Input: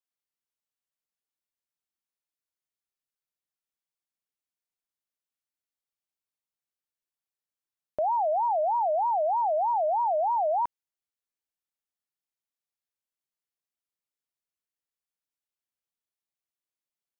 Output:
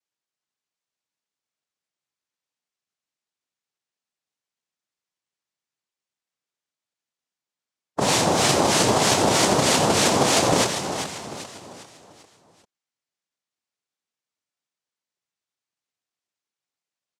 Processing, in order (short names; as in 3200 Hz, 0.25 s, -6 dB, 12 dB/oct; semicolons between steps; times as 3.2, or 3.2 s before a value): formant shift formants -5 st; feedback echo 0.396 s, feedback 43%, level -8 dB; noise vocoder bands 2; gain +6 dB